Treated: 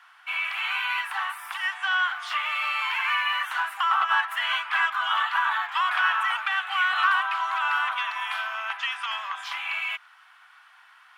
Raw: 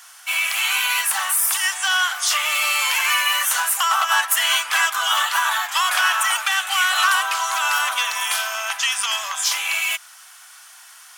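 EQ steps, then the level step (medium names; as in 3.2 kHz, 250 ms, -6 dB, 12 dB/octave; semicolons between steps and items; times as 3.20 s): high-pass 830 Hz 24 dB/octave; distance through air 500 m; 0.0 dB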